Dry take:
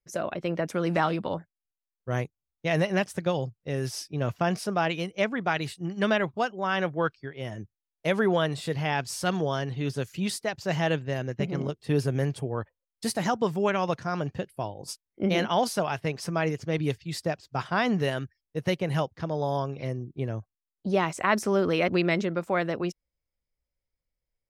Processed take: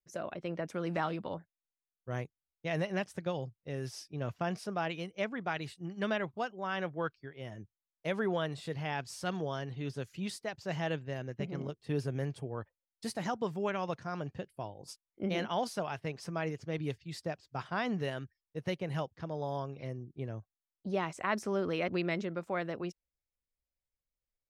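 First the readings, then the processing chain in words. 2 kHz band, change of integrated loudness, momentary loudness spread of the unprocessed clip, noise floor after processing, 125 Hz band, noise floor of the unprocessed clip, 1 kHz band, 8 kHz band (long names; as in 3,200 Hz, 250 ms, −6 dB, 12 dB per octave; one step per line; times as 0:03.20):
−8.5 dB, −8.5 dB, 9 LU, below −85 dBFS, −8.5 dB, below −85 dBFS, −8.5 dB, −11.0 dB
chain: high-shelf EQ 10,000 Hz −8 dB
level −8.5 dB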